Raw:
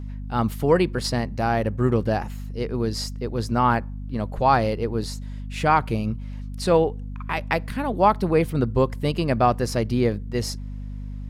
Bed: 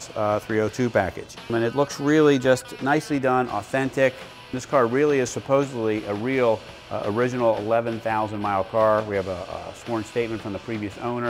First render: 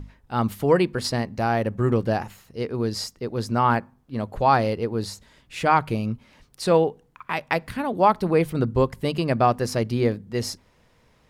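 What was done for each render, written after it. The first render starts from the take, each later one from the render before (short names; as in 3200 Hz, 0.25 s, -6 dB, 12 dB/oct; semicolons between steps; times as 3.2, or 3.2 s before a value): notches 50/100/150/200/250 Hz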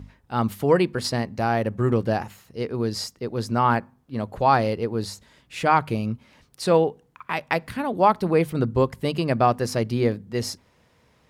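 HPF 57 Hz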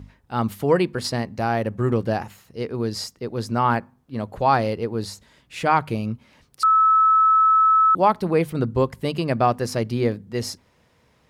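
6.63–7.95 bleep 1300 Hz -12.5 dBFS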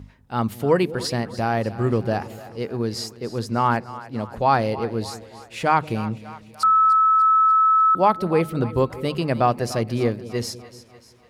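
split-band echo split 550 Hz, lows 0.191 s, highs 0.295 s, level -15.5 dB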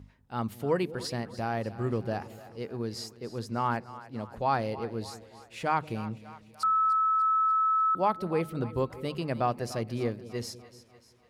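gain -9 dB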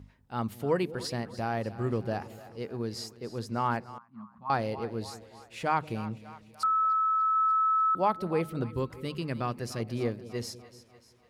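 3.98–4.5 double band-pass 470 Hz, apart 2.5 oct; 6.66–7.36 speaker cabinet 210–4200 Hz, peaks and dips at 220 Hz -7 dB, 320 Hz +9 dB, 560 Hz +10 dB, 1000 Hz -9 dB, 1800 Hz +5 dB, 3200 Hz -9 dB; 8.63–9.8 bell 690 Hz -9.5 dB 0.87 oct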